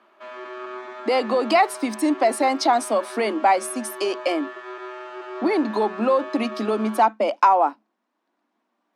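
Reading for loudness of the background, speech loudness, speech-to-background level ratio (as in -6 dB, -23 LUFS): -36.0 LUFS, -21.5 LUFS, 14.5 dB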